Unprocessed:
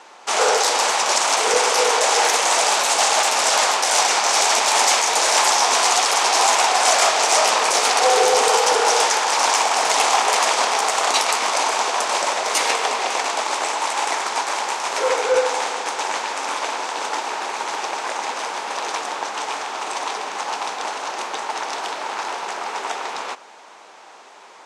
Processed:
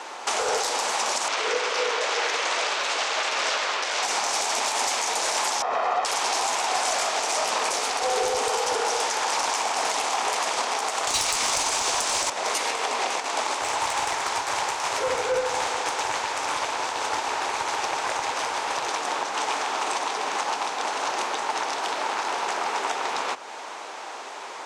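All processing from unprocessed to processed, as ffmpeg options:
-filter_complex "[0:a]asettb=1/sr,asplit=3[a][b][c];[a]atrim=end=1.284[d];[b]atrim=start=1.28:end=4.03,asetpts=PTS-STARTPTS,afade=t=in:d=0.004:c=qsin,afade=t=out:st=2.746:d=0.004:c=qsin,highpass=370,lowpass=4k,equalizer=f=800:w=2:g=-8.5[e];[c]atrim=start=4.026[f];[d][e]acrossfade=d=0.004:c1=hsin:c2=qsin[g];[g][f]acrossfade=d=0.004:c1=qsin:c2=hsin,asettb=1/sr,asplit=3[h][i][j];[h]atrim=end=5.624[k];[i]atrim=start=5.62:end=6.05,asetpts=PTS-STARTPTS,afade=t=in:d=0.004:c=qsin,afade=t=out:st=0.426:d=0.004:c=qsin,lowpass=1.4k,lowshelf=f=160:g=-9,aecho=1:1:1.6:0.45,atrim=end_sample=18963[l];[j]atrim=start=6.046[m];[k][l]acrossfade=d=0.004:c1=hsin:c2=qsin[n];[n][m]acrossfade=d=0.004:c1=qsin:c2=hsin,asettb=1/sr,asplit=3[o][p][q];[o]atrim=end=11.074[r];[p]atrim=start=11.07:end=12.3,asetpts=PTS-STARTPTS,afade=t=in:d=0.004:c=qsin,afade=t=out:st=1.226:d=0.004:c=qsin,lowpass=9.2k,aemphasis=mode=production:type=75kf,acontrast=29[s];[q]atrim=start=12.296[t];[r][s]acrossfade=d=0.004:c1=hsin:c2=qsin[u];[u][t]acrossfade=d=0.004:c1=qsin:c2=hsin,asettb=1/sr,asplit=3[v][w][x];[v]atrim=end=13.614[y];[w]atrim=start=13.61:end=18.89,asetpts=PTS-STARTPTS,afade=t=in:d=0.004:c=qsin,afade=t=out:st=5.276:d=0.004:c=qsin,aeval=exprs='(tanh(3.98*val(0)+0.4)-tanh(0.4))/3.98':c=same,highpass=f=220:p=1[z];[x]atrim=start=18.886[aa];[y][z]acrossfade=d=0.004:c1=hsin:c2=qsin[ab];[ab][aa]acrossfade=d=0.004:c1=qsin:c2=hsin,acrossover=split=190[ac][ad];[ad]acompressor=threshold=-37dB:ratio=2[ae];[ac][ae]amix=inputs=2:normalize=0,equalizer=f=190:t=o:w=0.22:g=-10.5,alimiter=limit=-22dB:level=0:latency=1:release=206,volume=7.5dB"

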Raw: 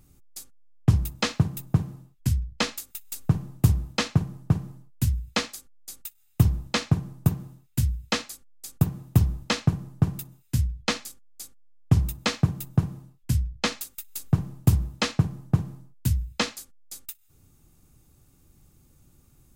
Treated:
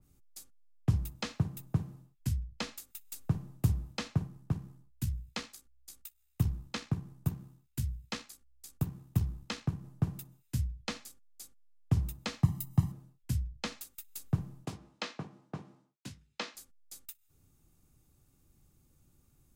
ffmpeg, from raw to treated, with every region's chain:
-filter_complex "[0:a]asettb=1/sr,asplit=3[a][b][c];[a]atrim=end=4.274[d];[b]atrim=start=4.27:end=9.84,asetpts=PTS-STARTPTS,afade=t=in:d=0.004:c=qsin,afade=t=out:st=5.566:d=0.004:c=qsin,equalizer=f=600:w=2.3:g=-4,tremolo=f=65:d=0.4[e];[c]atrim=start=9.836[f];[d][e]acrossfade=d=0.004:c1=hsin:c2=qsin[g];[g][f]acrossfade=d=0.004:c1=qsin:c2=hsin,asettb=1/sr,asplit=3[h][i][j];[h]atrim=end=12.434[k];[i]atrim=start=12.43:end=12.92,asetpts=PTS-STARTPTS,afade=t=in:d=0.004:c=qsin,afade=t=out:st=0.486:d=0.004:c=qsin,aemphasis=mode=production:type=cd,aecho=1:1:1:0.89,atrim=end_sample=21609[l];[j]atrim=start=12.916[m];[k][l]acrossfade=d=0.004:c1=hsin:c2=qsin[n];[n][m]acrossfade=d=0.004:c1=qsin:c2=hsin,asettb=1/sr,asplit=3[o][p][q];[o]atrim=end=14.654[r];[p]atrim=start=14.65:end=16.55,asetpts=PTS-STARTPTS,afade=t=in:d=0.004:c=qsin,afade=t=out:st=1.896:d=0.004:c=qsin,highpass=310,lowpass=5.5k,asplit=2[s][t];[t]adelay=20,volume=-9dB[u];[s][u]amix=inputs=2:normalize=0,atrim=end_sample=83790[v];[q]atrim=start=16.546[w];[r][v]acrossfade=d=0.004:c1=hsin:c2=qsin[x];[x][w]acrossfade=d=0.004:c1=qsin:c2=hsin,acrossover=split=220[y][z];[z]acompressor=threshold=-26dB:ratio=4[aa];[y][aa]amix=inputs=2:normalize=0,adynamicequalizer=threshold=0.00562:dfrequency=2400:dqfactor=0.7:tfrequency=2400:tqfactor=0.7:attack=5:release=100:ratio=0.375:range=2:mode=cutabove:tftype=highshelf,volume=-8.5dB"

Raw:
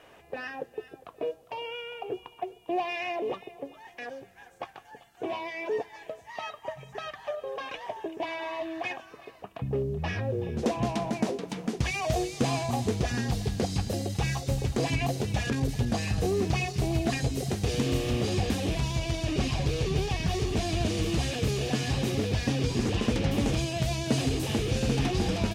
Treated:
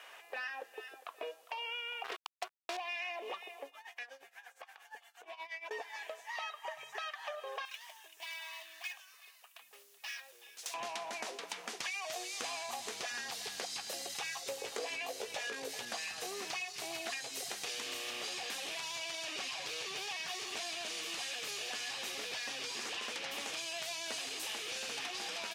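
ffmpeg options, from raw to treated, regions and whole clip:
-filter_complex "[0:a]asettb=1/sr,asplit=3[a][b][c];[a]atrim=end=2.044[d];[b]atrim=start=2.04:end=2.77,asetpts=PTS-STARTPTS,afade=t=in:d=0.004:c=qsin,afade=t=out:st=0.726:d=0.004:c=qsin,tremolo=f=280:d=0.462,acontrast=28,acrusher=bits=4:mix=0:aa=0.5[e];[c]atrim=start=2.766[f];[d][e]acrossfade=d=0.004:c1=hsin:c2=qsin[g];[g][f]acrossfade=d=0.004:c1=qsin:c2=hsin,asettb=1/sr,asplit=3[h][i][j];[h]atrim=end=3.664[k];[i]atrim=start=3.66:end=5.71,asetpts=PTS-STARTPTS,afade=t=in:d=0.004:c=qsin,afade=t=out:st=2.046:d=0.004:c=qsin,bandreject=f=350:w=7.7,acompressor=threshold=-40dB:ratio=6:attack=3.2:release=140:knee=1:detection=peak,tremolo=f=8.5:d=0.86[l];[j]atrim=start=5.706[m];[k][l]acrossfade=d=0.004:c1=hsin:c2=qsin[n];[n][m]acrossfade=d=0.004:c1=qsin:c2=hsin,asettb=1/sr,asplit=3[o][p][q];[o]atrim=end=7.654[r];[p]atrim=start=7.65:end=10.74,asetpts=PTS-STARTPTS,afade=t=in:d=0.004:c=qsin,afade=t=out:st=3.086:d=0.004:c=qsin,aderivative,acrusher=bits=3:mode=log:mix=0:aa=0.000001[s];[q]atrim=start=10.736[t];[r][s]acrossfade=d=0.004:c1=hsin:c2=qsin[u];[u][t]acrossfade=d=0.004:c1=qsin:c2=hsin,asettb=1/sr,asplit=3[v][w][x];[v]atrim=end=14.464[y];[w]atrim=start=14.46:end=15.8,asetpts=PTS-STARTPTS,afade=t=in:d=0.004:c=qsin,afade=t=out:st=1.336:d=0.004:c=qsin,equalizer=f=470:w=1.8:g=13,asplit=2[z][aa];[aa]adelay=18,volume=-5.5dB[ab];[z][ab]amix=inputs=2:normalize=0,atrim=end_sample=59094[ac];[x]atrim=start=15.796[ad];[y][ac]acrossfade=d=0.004:c1=hsin:c2=qsin[ae];[ae][ad]acrossfade=d=0.004:c1=qsin:c2=hsin,highpass=1.1k,acompressor=threshold=-43dB:ratio=6,volume=5dB"

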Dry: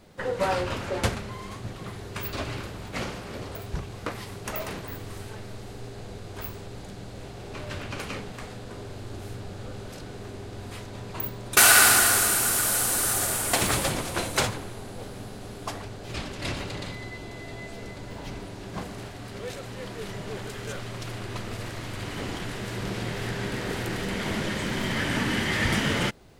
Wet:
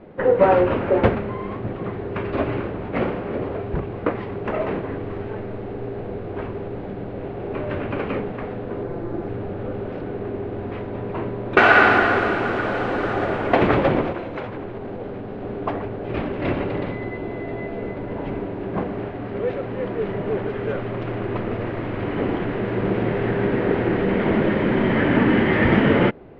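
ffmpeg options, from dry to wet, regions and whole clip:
-filter_complex "[0:a]asettb=1/sr,asplit=3[a][b][c];[a]atrim=end=8.834[d];[b]atrim=start=8.83:end=9.28,asetpts=PTS-STARTPTS,afade=t=in:d=0.004:c=qsin,afade=t=out:st=0.446:d=0.004:c=qsin,equalizer=f=2.9k:w=1.6:g=-7,aecho=1:1:5.9:0.67,atrim=end_sample=19845[e];[c]atrim=start=9.276[f];[d][e]acrossfade=d=0.004:c1=hsin:c2=qsin[g];[g][f]acrossfade=d=0.004:c1=qsin:c2=hsin,asettb=1/sr,asplit=3[h][i][j];[h]atrim=end=14.124[k];[i]atrim=start=14.12:end=15.42,asetpts=PTS-STARTPTS,afade=t=in:d=0.004:c=qsin,afade=t=out:st=1.296:d=0.004:c=qsin,lowpass=f=2.7k:p=1,acompressor=threshold=-36dB:ratio=5:attack=3.2:release=140:knee=1:detection=peak,aemphasis=mode=production:type=75fm[l];[j]atrim=start=15.416[m];[k][l]acrossfade=d=0.004:c1=hsin:c2=qsin[n];[n][m]acrossfade=d=0.004:c1=qsin:c2=hsin,lowpass=f=2.6k:w=0.5412,lowpass=f=2.6k:w=1.3066,equalizer=f=380:t=o:w=2.4:g=11,volume=3dB"

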